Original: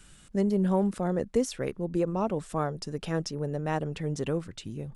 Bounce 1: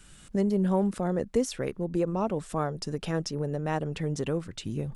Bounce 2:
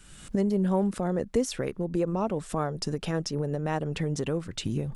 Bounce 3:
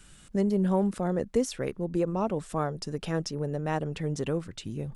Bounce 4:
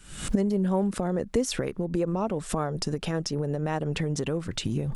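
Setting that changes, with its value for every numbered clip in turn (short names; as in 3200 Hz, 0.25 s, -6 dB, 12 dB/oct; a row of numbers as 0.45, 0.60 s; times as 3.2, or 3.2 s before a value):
recorder AGC, rising by: 14, 37, 5.9, 90 dB/s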